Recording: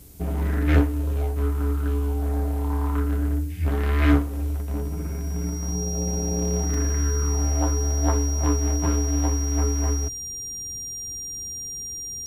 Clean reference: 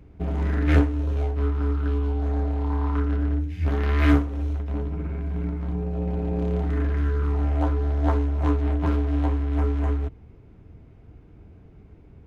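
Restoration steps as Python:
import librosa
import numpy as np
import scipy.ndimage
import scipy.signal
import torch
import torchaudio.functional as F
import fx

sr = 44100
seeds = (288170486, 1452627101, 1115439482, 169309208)

y = fx.notch(x, sr, hz=5700.0, q=30.0)
y = fx.fix_interpolate(y, sr, at_s=(6.74,), length_ms=2.2)
y = fx.noise_reduce(y, sr, print_start_s=11.63, print_end_s=12.13, reduce_db=14.0)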